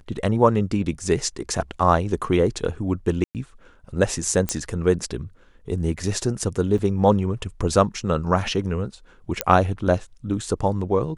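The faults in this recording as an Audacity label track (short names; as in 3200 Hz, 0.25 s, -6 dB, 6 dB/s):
3.240000	3.350000	gap 0.108 s
4.490000	4.490000	pop -7 dBFS
6.780000	6.780000	gap 4.8 ms
9.410000	9.410000	pop -3 dBFS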